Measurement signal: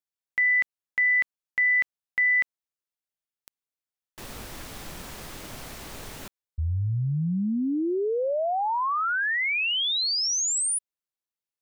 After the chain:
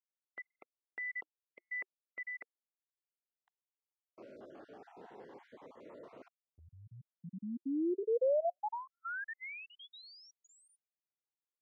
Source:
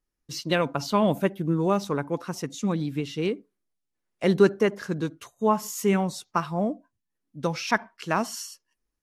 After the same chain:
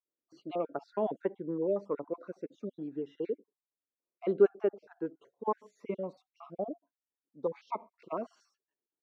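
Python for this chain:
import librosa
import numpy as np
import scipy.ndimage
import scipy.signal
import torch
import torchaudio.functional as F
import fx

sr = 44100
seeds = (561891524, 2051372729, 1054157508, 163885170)

y = fx.spec_dropout(x, sr, seeds[0], share_pct=38)
y = fx.ladder_bandpass(y, sr, hz=560.0, resonance_pct=25)
y = fx.notch_cascade(y, sr, direction='rising', hz=0.5)
y = y * 10.0 ** (7.5 / 20.0)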